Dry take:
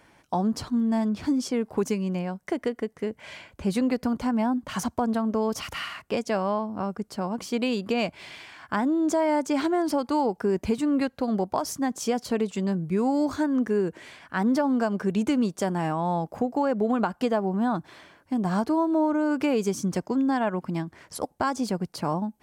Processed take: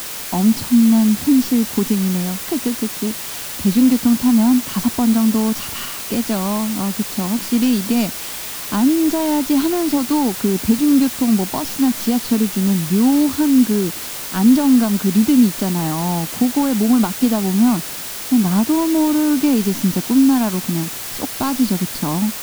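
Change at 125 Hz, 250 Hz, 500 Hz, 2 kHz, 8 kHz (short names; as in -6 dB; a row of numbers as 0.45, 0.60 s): +10.0, +11.0, +1.0, +5.5, +16.0 dB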